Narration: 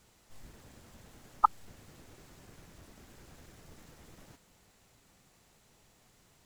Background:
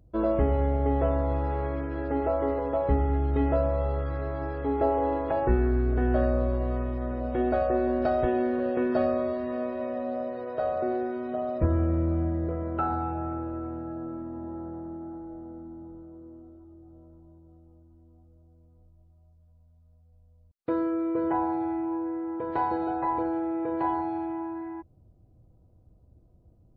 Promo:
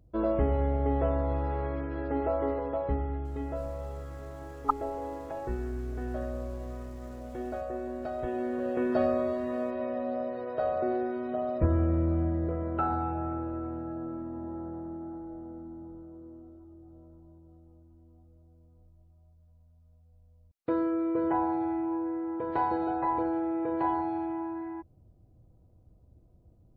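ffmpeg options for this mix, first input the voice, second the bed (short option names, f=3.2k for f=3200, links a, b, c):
-filter_complex "[0:a]adelay=3250,volume=-3dB[a];[1:a]volume=7dB,afade=t=out:st=2.45:d=0.87:silence=0.398107,afade=t=in:st=8.12:d=0.91:silence=0.334965[b];[a][b]amix=inputs=2:normalize=0"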